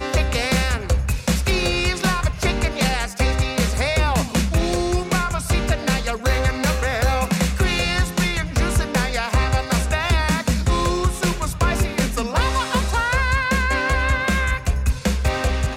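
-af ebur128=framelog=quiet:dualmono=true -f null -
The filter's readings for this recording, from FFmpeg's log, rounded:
Integrated loudness:
  I:         -17.7 LUFS
  Threshold: -27.7 LUFS
Loudness range:
  LRA:         0.6 LU
  Threshold: -37.7 LUFS
  LRA low:   -17.9 LUFS
  LRA high:  -17.3 LUFS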